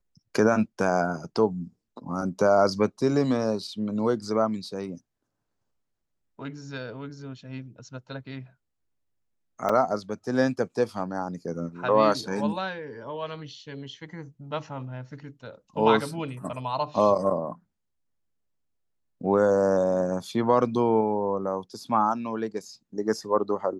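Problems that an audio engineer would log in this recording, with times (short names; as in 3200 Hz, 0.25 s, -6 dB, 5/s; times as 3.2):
9.69 gap 4.6 ms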